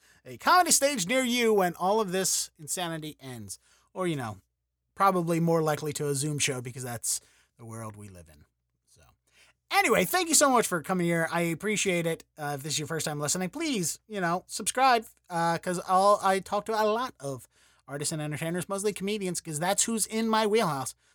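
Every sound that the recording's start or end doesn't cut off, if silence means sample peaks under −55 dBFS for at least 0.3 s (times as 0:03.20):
0:04.97–0:08.44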